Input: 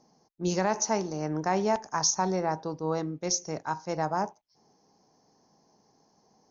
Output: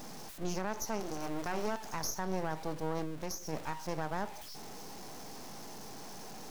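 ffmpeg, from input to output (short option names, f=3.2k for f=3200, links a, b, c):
-filter_complex "[0:a]aeval=exprs='val(0)+0.5*0.02*sgn(val(0))':c=same,asettb=1/sr,asplit=3[a][b][c];[a]atrim=end=1.004[d];[b]atrim=start=1:end=1.84,asetpts=PTS-STARTPTS,afade=t=in:d=0.004:c=qsin,afade=t=out:st=0.836:d=0.004:c=qsin,highpass=140[e];[c]atrim=start=1.836[f];[d][e]acrossfade=d=0.004:c1=hsin:c2=qsin[g];[g][f]acrossfade=d=0.004:c1=qsin:c2=hsin,alimiter=limit=-20dB:level=0:latency=1:release=134,asettb=1/sr,asplit=3[h][i][j];[h]atrim=end=3.034[k];[i]atrim=start=3.03:end=3.53,asetpts=PTS-STARTPTS,afade=t=in:d=0.004:c=qsin,afade=t=out:st=0.496:d=0.004:c=qsin,acompressor=threshold=-29dB:ratio=6[l];[j]atrim=start=3.526[m];[k][l]acrossfade=d=0.004:c1=hsin:c2=qsin[n];[n][m]acrossfade=d=0.004:c1=qsin:c2=hsin,aeval=exprs='max(val(0),0)':c=same,volume=-2.5dB"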